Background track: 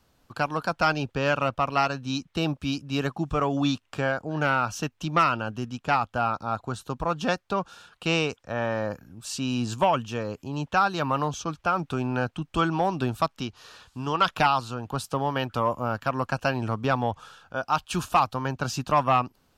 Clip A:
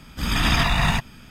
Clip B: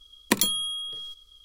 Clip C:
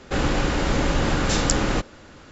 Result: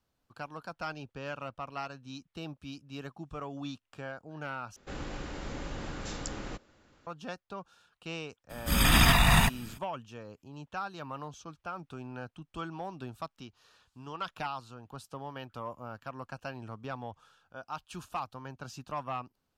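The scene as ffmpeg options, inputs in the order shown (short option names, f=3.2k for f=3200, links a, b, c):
-filter_complex "[0:a]volume=-15dB[a];[1:a]aexciter=amount=4.4:drive=2:freq=7.9k[b];[a]asplit=2[c][d];[c]atrim=end=4.764[e];[3:a]atrim=end=2.31,asetpts=PTS-STARTPTS,volume=-17.5dB[f];[d]atrim=start=7.066[g];[b]atrim=end=1.3,asetpts=PTS-STARTPTS,volume=-2dB,afade=t=in:d=0.02,afade=t=out:st=1.28:d=0.02,adelay=8490[h];[e][f]acrossfade=d=0.004:c1=hsin:c2=hsin[i];[i][g]acrossfade=d=0.004:c1=hsin:c2=hsin[j];[j][h]amix=inputs=2:normalize=0"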